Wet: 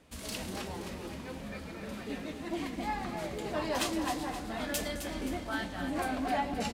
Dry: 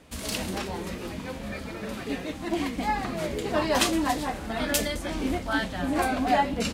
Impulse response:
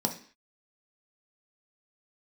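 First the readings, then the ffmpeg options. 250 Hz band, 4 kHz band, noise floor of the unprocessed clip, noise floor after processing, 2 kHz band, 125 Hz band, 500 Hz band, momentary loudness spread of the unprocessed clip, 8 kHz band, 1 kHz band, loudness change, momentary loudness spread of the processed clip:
-7.0 dB, -8.0 dB, -38 dBFS, -44 dBFS, -7.5 dB, -7.0 dB, -7.5 dB, 11 LU, -8.0 dB, -7.5 dB, -7.5 dB, 10 LU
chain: -filter_complex "[0:a]asoftclip=type=tanh:threshold=-15.5dB,aecho=1:1:262|524|786|1048|1310:0.355|0.17|0.0817|0.0392|0.0188,asplit=2[a][b];[1:a]atrim=start_sample=2205,adelay=105[c];[b][c]afir=irnorm=-1:irlink=0,volume=-24.5dB[d];[a][d]amix=inputs=2:normalize=0,volume=-7.5dB"

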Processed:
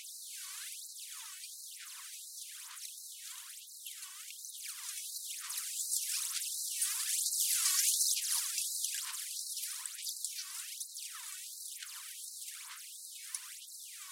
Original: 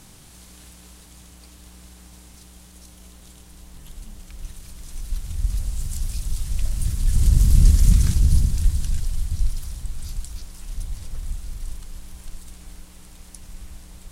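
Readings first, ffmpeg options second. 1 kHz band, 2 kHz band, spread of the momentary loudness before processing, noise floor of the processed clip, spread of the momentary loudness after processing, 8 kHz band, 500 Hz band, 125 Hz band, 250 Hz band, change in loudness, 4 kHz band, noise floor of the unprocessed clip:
-3.5 dB, +1.0 dB, 25 LU, -50 dBFS, 16 LU, +4.0 dB, under -40 dB, under -40 dB, under -40 dB, -12.0 dB, +4.0 dB, -47 dBFS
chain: -af "aphaser=in_gain=1:out_gain=1:delay=2.7:decay=0.64:speed=1.1:type=sinusoidal,afftfilt=real='re*gte(b*sr/1024,890*pow(3900/890,0.5+0.5*sin(2*PI*1.4*pts/sr)))':imag='im*gte(b*sr/1024,890*pow(3900/890,0.5+0.5*sin(2*PI*1.4*pts/sr)))':win_size=1024:overlap=0.75,volume=2dB"

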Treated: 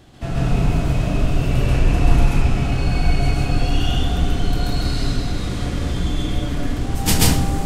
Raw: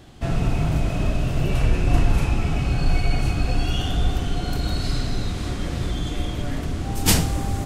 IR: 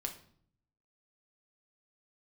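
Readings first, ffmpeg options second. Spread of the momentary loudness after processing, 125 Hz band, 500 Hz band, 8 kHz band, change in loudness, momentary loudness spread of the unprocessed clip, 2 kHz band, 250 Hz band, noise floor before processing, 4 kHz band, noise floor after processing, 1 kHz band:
7 LU, +3.5 dB, +3.5 dB, +2.5 dB, +3.5 dB, 7 LU, +3.0 dB, +4.0 dB, -28 dBFS, +3.0 dB, -24 dBFS, +3.5 dB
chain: -filter_complex "[0:a]asplit=2[a][b];[1:a]atrim=start_sample=2205,adelay=134[c];[b][c]afir=irnorm=-1:irlink=0,volume=3dB[d];[a][d]amix=inputs=2:normalize=0,volume=-1.5dB"

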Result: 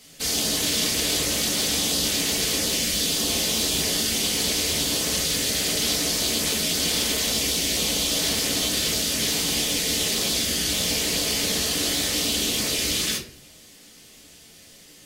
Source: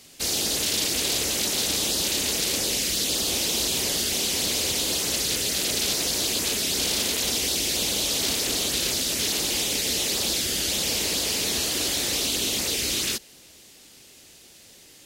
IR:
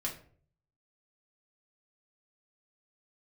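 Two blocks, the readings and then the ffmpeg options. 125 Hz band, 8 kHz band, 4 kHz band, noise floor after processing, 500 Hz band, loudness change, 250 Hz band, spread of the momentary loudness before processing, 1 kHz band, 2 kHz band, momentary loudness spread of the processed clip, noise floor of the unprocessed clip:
+4.0 dB, +1.0 dB, +1.5 dB, -49 dBFS, +1.5 dB, +1.5 dB, +4.0 dB, 1 LU, +1.5 dB, +2.0 dB, 1 LU, -51 dBFS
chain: -filter_complex "[1:a]atrim=start_sample=2205[a];[0:a][a]afir=irnorm=-1:irlink=0"

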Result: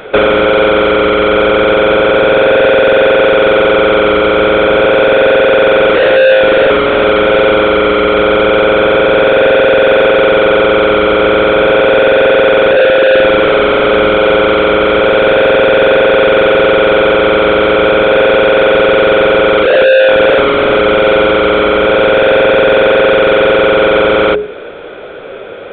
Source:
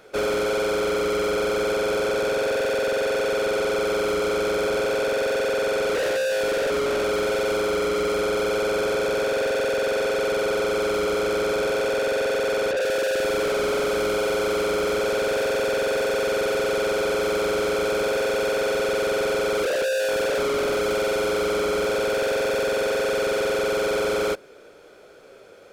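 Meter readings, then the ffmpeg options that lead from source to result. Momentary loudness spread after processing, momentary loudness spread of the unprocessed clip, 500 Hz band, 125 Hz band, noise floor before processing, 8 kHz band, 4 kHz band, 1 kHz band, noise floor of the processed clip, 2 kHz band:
2 LU, 0 LU, +15.0 dB, +16.0 dB, -47 dBFS, under -40 dB, +14.5 dB, +17.0 dB, -25 dBFS, +16.5 dB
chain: -af "bandreject=f=60:t=h:w=6,bandreject=f=120:t=h:w=6,bandreject=f=180:t=h:w=6,bandreject=f=240:t=h:w=6,bandreject=f=300:t=h:w=6,bandreject=f=360:t=h:w=6,bandreject=f=420:t=h:w=6,aresample=8000,aresample=44100,alimiter=level_in=23dB:limit=-1dB:release=50:level=0:latency=1,volume=-1dB"

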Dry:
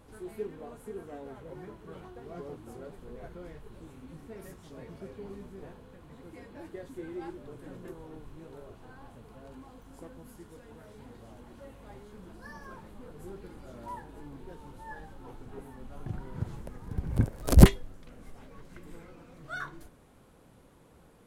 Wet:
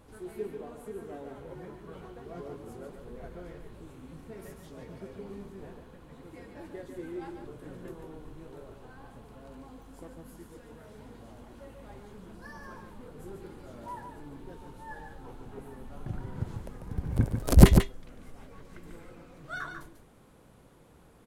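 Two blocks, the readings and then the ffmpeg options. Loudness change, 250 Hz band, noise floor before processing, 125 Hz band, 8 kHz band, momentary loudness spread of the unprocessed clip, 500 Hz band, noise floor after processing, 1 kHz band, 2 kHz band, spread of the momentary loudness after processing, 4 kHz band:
+1.0 dB, +1.0 dB, -58 dBFS, +1.0 dB, +1.0 dB, 12 LU, +1.0 dB, -57 dBFS, +1.0 dB, +1.0 dB, 15 LU, +1.0 dB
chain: -af "aecho=1:1:144:0.473"

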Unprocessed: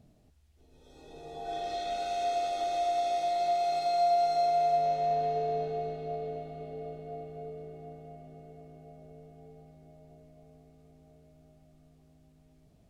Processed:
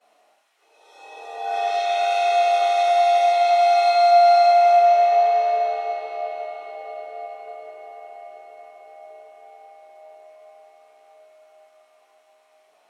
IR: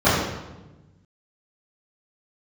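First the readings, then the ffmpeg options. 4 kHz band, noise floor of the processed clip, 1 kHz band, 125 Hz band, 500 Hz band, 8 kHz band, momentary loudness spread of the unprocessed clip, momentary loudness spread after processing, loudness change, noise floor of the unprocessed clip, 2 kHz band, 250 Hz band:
+11.5 dB, -61 dBFS, +12.5 dB, under -35 dB, +11.5 dB, n/a, 20 LU, 21 LU, +13.0 dB, -62 dBFS, +17.5 dB, under -10 dB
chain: -filter_complex "[0:a]highpass=f=710:w=0.5412,highpass=f=710:w=1.3066[a];[1:a]atrim=start_sample=2205,asetrate=79380,aresample=44100[b];[a][b]afir=irnorm=-1:irlink=0,volume=-3.5dB"

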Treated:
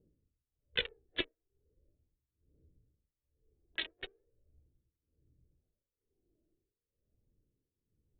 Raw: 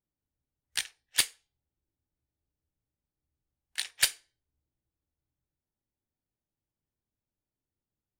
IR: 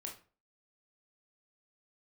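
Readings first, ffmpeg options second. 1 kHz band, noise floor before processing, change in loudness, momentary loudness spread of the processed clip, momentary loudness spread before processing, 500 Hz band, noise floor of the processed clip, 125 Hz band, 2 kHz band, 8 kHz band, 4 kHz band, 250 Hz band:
-8.0 dB, under -85 dBFS, -9.5 dB, 10 LU, 9 LU, +8.0 dB, under -85 dBFS, +1.5 dB, -5.0 dB, under -40 dB, -7.0 dB, n/a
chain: -filter_complex "[0:a]aphaser=in_gain=1:out_gain=1:delay=3.2:decay=0.64:speed=0.39:type=triangular,lowshelf=f=640:t=q:w=3:g=10.5,tremolo=f=1.1:d=0.92,acrossover=split=950[a][b];[b]aeval=exprs='val(0)*gte(abs(val(0)),0.00841)':c=same[c];[a][c]amix=inputs=2:normalize=0,aresample=8000,aresample=44100,volume=2dB"

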